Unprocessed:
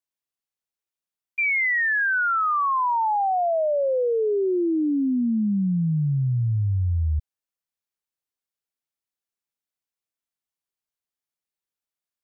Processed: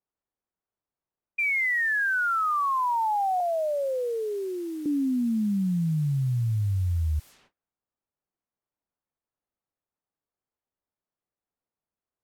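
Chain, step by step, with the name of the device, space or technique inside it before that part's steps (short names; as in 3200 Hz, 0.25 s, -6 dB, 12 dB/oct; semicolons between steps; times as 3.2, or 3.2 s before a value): cassette deck with a dynamic noise filter (white noise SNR 26 dB; low-pass opened by the level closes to 850 Hz, open at -25.5 dBFS); 3.4–4.86 HPF 500 Hz 12 dB/oct; gate -56 dBFS, range -30 dB; gain -3 dB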